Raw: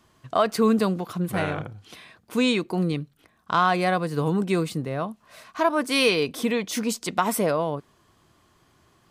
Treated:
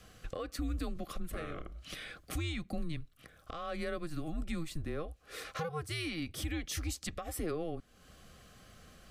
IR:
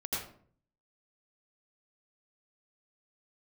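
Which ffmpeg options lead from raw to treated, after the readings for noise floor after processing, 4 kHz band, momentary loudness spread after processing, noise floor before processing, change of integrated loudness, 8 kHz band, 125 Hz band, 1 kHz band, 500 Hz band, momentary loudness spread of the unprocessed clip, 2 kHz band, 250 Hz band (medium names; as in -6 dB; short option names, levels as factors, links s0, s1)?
-63 dBFS, -13.5 dB, 20 LU, -63 dBFS, -15.5 dB, -10.0 dB, -11.0 dB, -20.0 dB, -17.0 dB, 11 LU, -15.0 dB, -15.5 dB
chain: -af "acompressor=threshold=0.00708:ratio=2.5,alimiter=level_in=2.37:limit=0.0631:level=0:latency=1:release=486,volume=0.422,afreqshift=-160,asuperstop=centerf=920:order=12:qfactor=4,volume=1.78"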